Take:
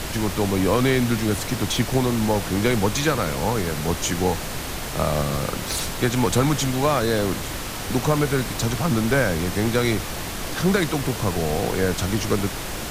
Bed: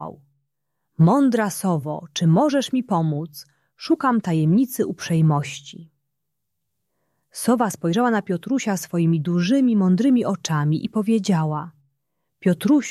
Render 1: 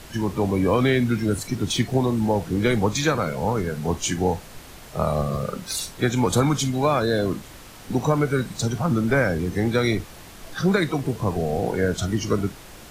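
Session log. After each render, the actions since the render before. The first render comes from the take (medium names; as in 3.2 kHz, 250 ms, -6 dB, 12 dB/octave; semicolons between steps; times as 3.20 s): noise print and reduce 13 dB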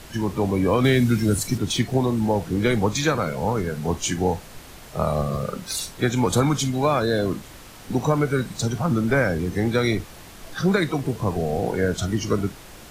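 0.84–1.58 s: tone controls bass +4 dB, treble +7 dB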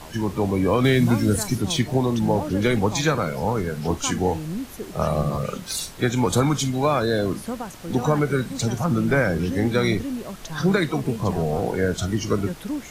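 add bed -12.5 dB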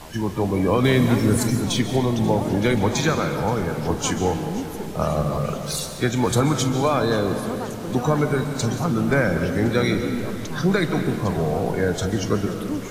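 algorithmic reverb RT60 2.4 s, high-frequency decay 0.55×, pre-delay 100 ms, DRR 7 dB; modulated delay 531 ms, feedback 67%, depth 143 cents, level -19 dB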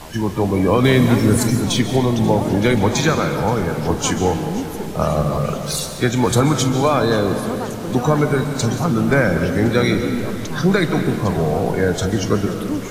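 trim +4 dB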